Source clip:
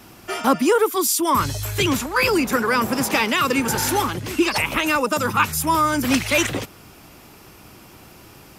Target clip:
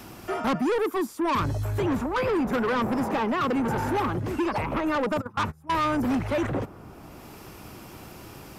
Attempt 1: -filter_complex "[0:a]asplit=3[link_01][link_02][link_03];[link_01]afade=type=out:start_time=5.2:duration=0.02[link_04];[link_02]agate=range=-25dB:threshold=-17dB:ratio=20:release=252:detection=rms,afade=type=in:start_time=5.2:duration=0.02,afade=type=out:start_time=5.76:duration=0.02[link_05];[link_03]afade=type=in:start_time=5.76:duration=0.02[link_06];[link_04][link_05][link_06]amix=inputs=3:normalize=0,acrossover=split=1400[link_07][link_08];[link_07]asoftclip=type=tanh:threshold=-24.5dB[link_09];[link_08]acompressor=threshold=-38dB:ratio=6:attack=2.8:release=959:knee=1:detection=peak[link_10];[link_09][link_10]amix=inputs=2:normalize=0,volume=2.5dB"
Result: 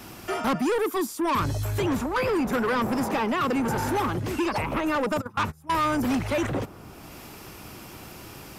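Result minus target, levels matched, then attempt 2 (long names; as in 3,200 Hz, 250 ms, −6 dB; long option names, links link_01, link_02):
downward compressor: peak gain reduction −8 dB
-filter_complex "[0:a]asplit=3[link_01][link_02][link_03];[link_01]afade=type=out:start_time=5.2:duration=0.02[link_04];[link_02]agate=range=-25dB:threshold=-17dB:ratio=20:release=252:detection=rms,afade=type=in:start_time=5.2:duration=0.02,afade=type=out:start_time=5.76:duration=0.02[link_05];[link_03]afade=type=in:start_time=5.76:duration=0.02[link_06];[link_04][link_05][link_06]amix=inputs=3:normalize=0,acrossover=split=1400[link_07][link_08];[link_07]asoftclip=type=tanh:threshold=-24.5dB[link_09];[link_08]acompressor=threshold=-47.5dB:ratio=6:attack=2.8:release=959:knee=1:detection=peak[link_10];[link_09][link_10]amix=inputs=2:normalize=0,volume=2.5dB"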